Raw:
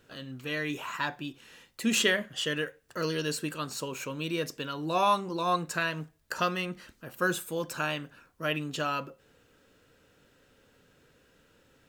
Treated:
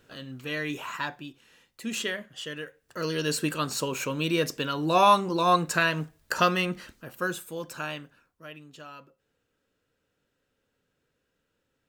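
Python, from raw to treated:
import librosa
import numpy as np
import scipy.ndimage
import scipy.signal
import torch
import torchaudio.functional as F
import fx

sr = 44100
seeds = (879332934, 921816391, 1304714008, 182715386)

y = fx.gain(x, sr, db=fx.line((0.93, 1.0), (1.44, -6.0), (2.6, -6.0), (3.44, 6.0), (6.77, 6.0), (7.33, -3.0), (7.97, -3.0), (8.51, -14.0)))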